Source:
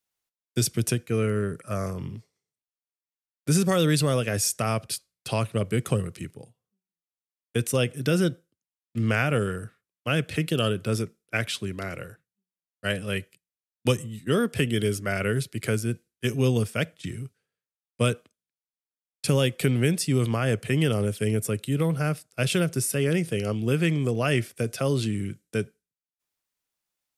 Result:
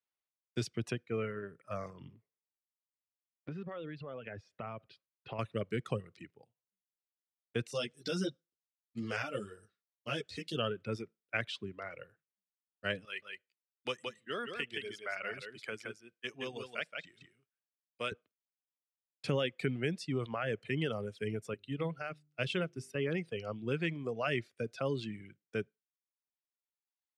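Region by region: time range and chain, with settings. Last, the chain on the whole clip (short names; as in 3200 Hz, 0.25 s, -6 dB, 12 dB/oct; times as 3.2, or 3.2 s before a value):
2.13–5.39 compressor 16:1, threshold -26 dBFS + air absorption 360 m
7.71–10.57 resonant high shelf 3400 Hz +12 dB, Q 1.5 + ensemble effect
13.05–18.12 HPF 940 Hz 6 dB/oct + echo 0.171 s -3 dB
21.54–22.95 bell 2900 Hz +3 dB 0.68 oct + de-hum 49.8 Hz, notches 8 + upward expander, over -34 dBFS
whole clip: LPF 3400 Hz 12 dB/oct; low shelf 220 Hz -8 dB; reverb removal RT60 1.9 s; gain -6 dB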